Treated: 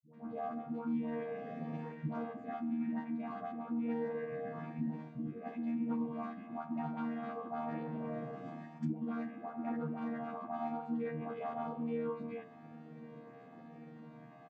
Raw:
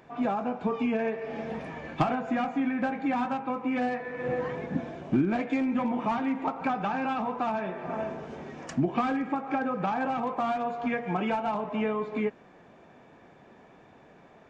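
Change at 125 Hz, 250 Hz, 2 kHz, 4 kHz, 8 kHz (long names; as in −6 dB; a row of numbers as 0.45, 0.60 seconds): −7.0 dB, −8.0 dB, −16.5 dB, below −15 dB, can't be measured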